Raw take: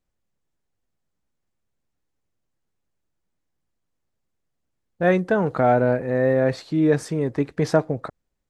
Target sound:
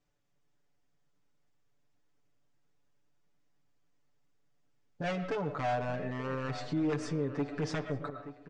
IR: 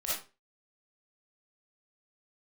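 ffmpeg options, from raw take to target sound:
-filter_complex "[0:a]aeval=exprs='0.188*(abs(mod(val(0)/0.188+3,4)-2)-1)':channel_layout=same,lowshelf=frequency=66:gain=-7.5,bandreject=frequency=4100:width=19,asplit=2[link_01][link_02];[1:a]atrim=start_sample=2205,lowpass=3900,adelay=54[link_03];[link_02][link_03]afir=irnorm=-1:irlink=0,volume=-18.5dB[link_04];[link_01][link_04]amix=inputs=2:normalize=0,acompressor=threshold=-36dB:ratio=3,lowpass=frequency=7100:width=0.5412,lowpass=frequency=7100:width=1.3066,asplit=2[link_05][link_06];[link_06]adelay=878,lowpass=frequency=2900:poles=1,volume=-15.5dB,asplit=2[link_07][link_08];[link_08]adelay=878,lowpass=frequency=2900:poles=1,volume=0.38,asplit=2[link_09][link_10];[link_10]adelay=878,lowpass=frequency=2900:poles=1,volume=0.38[link_11];[link_05][link_07][link_09][link_11]amix=inputs=4:normalize=0,alimiter=level_in=5dB:limit=-24dB:level=0:latency=1:release=32,volume=-5dB,aecho=1:1:6.9:0.98"

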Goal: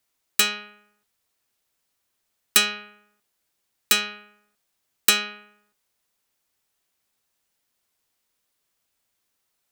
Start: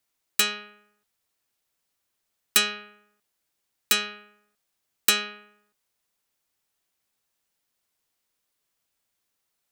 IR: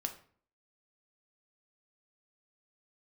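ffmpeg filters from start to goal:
-filter_complex "[0:a]asplit=2[link_01][link_02];[1:a]atrim=start_sample=2205,afade=type=out:start_time=0.16:duration=0.01,atrim=end_sample=7497,asetrate=57330,aresample=44100[link_03];[link_02][link_03]afir=irnorm=-1:irlink=0,volume=-5.5dB[link_04];[link_01][link_04]amix=inputs=2:normalize=0"

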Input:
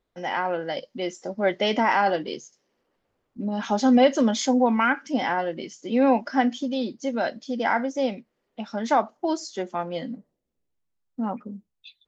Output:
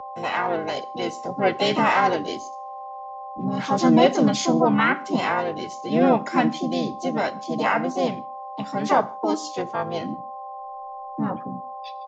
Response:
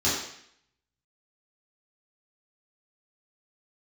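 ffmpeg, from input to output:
-filter_complex "[0:a]aeval=exprs='val(0)+0.0178*sin(2*PI*800*n/s)':channel_layout=same,asplit=4[link_01][link_02][link_03][link_04];[link_02]asetrate=29433,aresample=44100,atempo=1.49831,volume=-14dB[link_05];[link_03]asetrate=33038,aresample=44100,atempo=1.33484,volume=-11dB[link_06];[link_04]asetrate=58866,aresample=44100,atempo=0.749154,volume=-4dB[link_07];[link_01][link_05][link_06][link_07]amix=inputs=4:normalize=0,afreqshift=-14,asplit=2[link_08][link_09];[1:a]atrim=start_sample=2205,afade=type=out:start_time=0.22:duration=0.01,atrim=end_sample=10143[link_10];[link_09][link_10]afir=irnorm=-1:irlink=0,volume=-30.5dB[link_11];[link_08][link_11]amix=inputs=2:normalize=0,aresample=16000,aresample=44100"

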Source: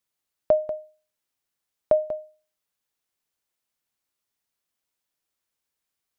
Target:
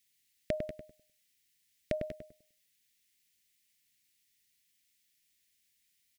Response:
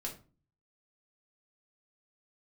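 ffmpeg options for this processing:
-filter_complex "[0:a]firequalizer=gain_entry='entry(220,0);entry(890,-30);entry(1900,7)':delay=0.05:min_phase=1,asplit=2[link_01][link_02];[link_02]adelay=101,lowpass=frequency=1300:poles=1,volume=-3.5dB,asplit=2[link_03][link_04];[link_04]adelay=101,lowpass=frequency=1300:poles=1,volume=0.28,asplit=2[link_05][link_06];[link_06]adelay=101,lowpass=frequency=1300:poles=1,volume=0.28,asplit=2[link_07][link_08];[link_08]adelay=101,lowpass=frequency=1300:poles=1,volume=0.28[link_09];[link_03][link_05][link_07][link_09]amix=inputs=4:normalize=0[link_10];[link_01][link_10]amix=inputs=2:normalize=0,volume=2dB"

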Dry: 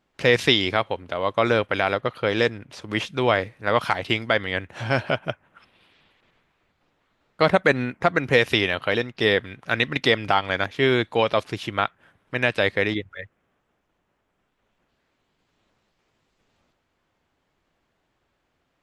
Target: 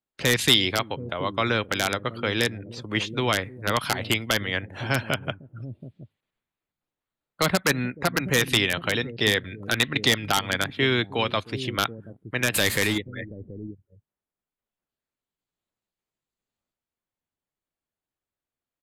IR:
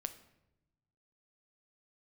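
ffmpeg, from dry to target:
-filter_complex "[0:a]asettb=1/sr,asplit=3[link_01][link_02][link_03];[link_01]atrim=end=12.544[link_04];[link_02]atrim=start=12.54:end=12.98,asetpts=PTS-STARTPTS,afade=type=in:duration=0.004:curve=qsin,afade=type=out:start_time=0.436:duration=0.004:curve=qsin,aeval=exprs='val(0)+0.5*0.0501*sgn(val(0))':channel_layout=same[link_05];[link_03]atrim=start=12.976[link_06];[link_04][link_05]acrossfade=duration=0.004:curve1=hsin:curve2=qsin[link_07];[link_07][link_06]acrossfade=duration=0.004:curve1=qsin:curve2=hsin,afftdn=noise_reduction=22:noise_floor=-45,equalizer=frequency=5600:width_type=o:width=0.27:gain=-9.5,acrossover=split=340|870|3100[link_08][link_09][link_10][link_11];[link_08]aecho=1:1:307|728:0.2|0.398[link_12];[link_09]acompressor=threshold=-34dB:ratio=6[link_13];[link_10]aeval=exprs='(mod(4.73*val(0)+1,2)-1)/4.73':channel_layout=same[link_14];[link_11]aemphasis=mode=production:type=75kf[link_15];[link_12][link_13][link_14][link_15]amix=inputs=4:normalize=0,aeval=exprs='0.794*(cos(1*acos(clip(val(0)/0.794,-1,1)))-cos(1*PI/2))+0.00794*(cos(7*acos(clip(val(0)/0.794,-1,1)))-cos(7*PI/2))':channel_layout=same,aresample=32000,aresample=44100"

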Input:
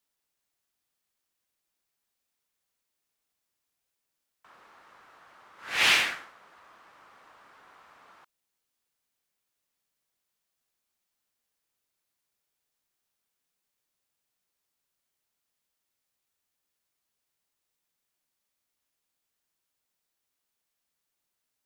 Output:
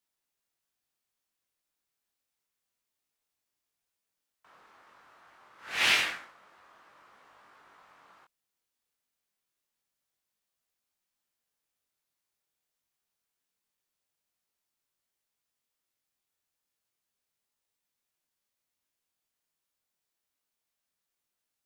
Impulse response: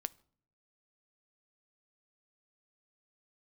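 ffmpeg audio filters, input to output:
-af "flanger=delay=19.5:depth=4.9:speed=0.28"

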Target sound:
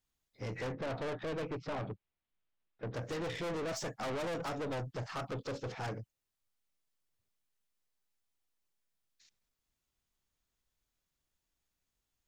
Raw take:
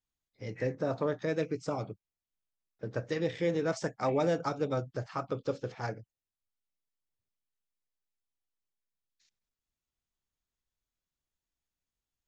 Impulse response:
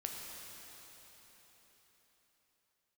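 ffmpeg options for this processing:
-filter_complex "[0:a]asettb=1/sr,asplit=3[link_01][link_02][link_03];[link_01]atrim=end=0.724[link_04];[link_02]atrim=start=0.72:end=2.94,asetpts=PTS-STARTPTS,afade=type=in:duration=0.004:curve=qsin,afade=type=out:start_time=2.216:duration=0.004:curve=qsin,lowpass=frequency=3600:width=0.5412,lowpass=frequency=3600:width=1.3066[link_05];[link_03]atrim=start=2.936[link_06];[link_04][link_05]acrossfade=duration=0.004:curve1=hsin:curve2=qsin[link_07];[link_07][link_06]acrossfade=duration=0.004:curve1=qsin:curve2=hsin,aeval=exprs='(tanh(112*val(0)+0.15)-tanh(0.15))/112':channel_layout=same,volume=5.5dB"

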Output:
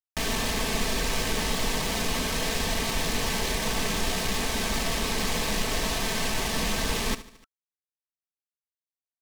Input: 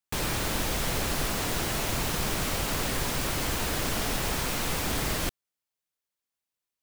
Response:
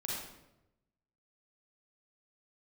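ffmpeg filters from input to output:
-af "lowpass=7100,asetrate=32667,aresample=44100,aecho=1:1:4.5:0.56,acrusher=bits=4:mix=0:aa=0.5,asuperstop=centerf=1400:order=4:qfactor=7.4,aecho=1:1:73|146|219|292:0.178|0.0694|0.027|0.0105,areverse,acompressor=mode=upward:threshold=-47dB:ratio=2.5,areverse,highshelf=frequency=5000:gain=5.5"

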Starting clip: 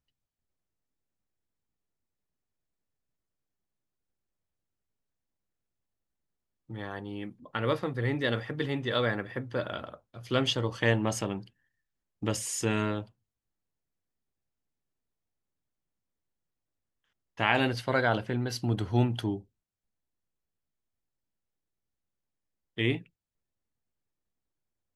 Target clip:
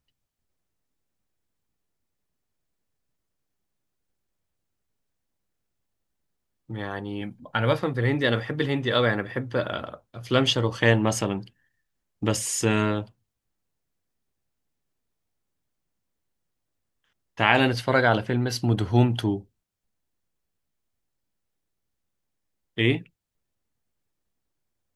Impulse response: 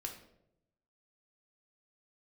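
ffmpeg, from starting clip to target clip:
-filter_complex "[0:a]asettb=1/sr,asplit=3[link_01][link_02][link_03];[link_01]atrim=end=7.214[link_04];[link_02]atrim=start=7.21:end=7.77,asetpts=PTS-STARTPTS,afade=type=in:duration=0.004:curve=qsin,afade=type=out:start_time=0.556:duration=0.004:curve=qsin,aecho=1:1:1.3:0.48,atrim=end_sample=24696[link_05];[link_03]atrim=start=7.766[link_06];[link_04][link_05]acrossfade=duration=0.004:curve1=hsin:curve2=qsin[link_07];[link_07][link_06]acrossfade=duration=0.004:curve1=qsin:curve2=hsin,volume=6dB"

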